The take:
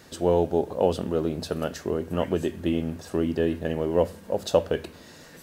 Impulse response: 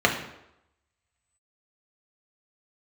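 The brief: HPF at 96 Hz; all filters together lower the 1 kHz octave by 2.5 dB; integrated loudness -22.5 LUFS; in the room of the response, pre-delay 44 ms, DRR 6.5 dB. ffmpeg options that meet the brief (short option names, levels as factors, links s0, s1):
-filter_complex "[0:a]highpass=96,equalizer=f=1000:t=o:g=-3.5,asplit=2[s0][s1];[1:a]atrim=start_sample=2205,adelay=44[s2];[s1][s2]afir=irnorm=-1:irlink=0,volume=0.0596[s3];[s0][s3]amix=inputs=2:normalize=0,volume=1.58"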